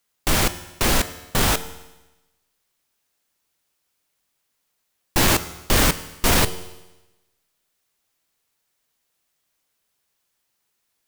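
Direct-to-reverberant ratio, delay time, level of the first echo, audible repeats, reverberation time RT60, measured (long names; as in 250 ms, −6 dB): 12.0 dB, no echo audible, no echo audible, no echo audible, 1.0 s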